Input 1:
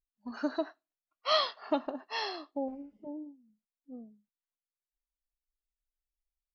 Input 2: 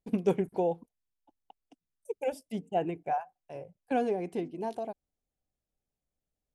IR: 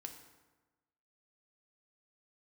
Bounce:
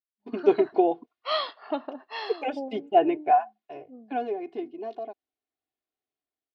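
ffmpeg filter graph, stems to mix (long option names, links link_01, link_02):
-filter_complex "[0:a]volume=-8dB[link_01];[1:a]aecho=1:1:2.8:0.9,adelay=200,volume=-2.5dB,afade=type=out:start_time=3.35:duration=0.66:silence=0.334965[link_02];[link_01][link_02]amix=inputs=2:normalize=0,highpass=210,dynaudnorm=framelen=100:gausssize=9:maxgain=8.5dB,lowpass=frequency=4100:width=0.5412,lowpass=frequency=4100:width=1.3066"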